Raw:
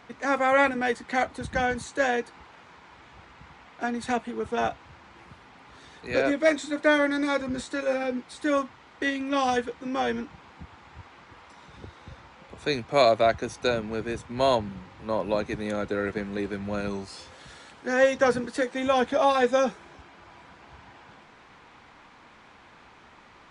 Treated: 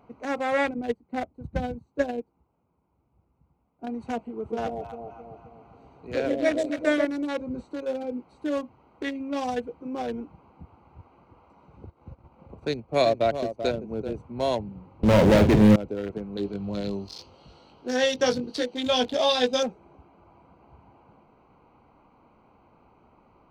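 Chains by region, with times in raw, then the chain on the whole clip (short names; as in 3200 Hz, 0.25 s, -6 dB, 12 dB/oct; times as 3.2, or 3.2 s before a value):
0.74–3.87 low shelf 390 Hz +12 dB + upward expander 2.5:1, over -31 dBFS
4.37–7.05 notch 890 Hz, Q 29 + echo with dull and thin repeats by turns 0.133 s, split 800 Hz, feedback 70%, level -2.5 dB
11.85–14.13 low shelf 470 Hz +3.5 dB + transient shaper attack 0 dB, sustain -11 dB + echo 0.387 s -9 dB
15.03–15.76 tilt shelf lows +8 dB, about 760 Hz + sample leveller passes 5 + doubler 47 ms -7.5 dB
16.37–19.63 band shelf 4100 Hz +13 dB 1.2 oct + doubler 20 ms -5 dB
whole clip: Wiener smoothing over 25 samples; dynamic EQ 1200 Hz, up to -6 dB, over -42 dBFS, Q 1.7; gain -1.5 dB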